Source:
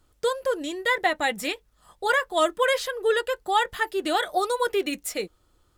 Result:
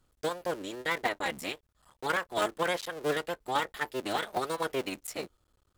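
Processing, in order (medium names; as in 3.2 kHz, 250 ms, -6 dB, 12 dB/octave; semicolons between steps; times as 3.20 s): cycle switcher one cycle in 3, muted; trim -6 dB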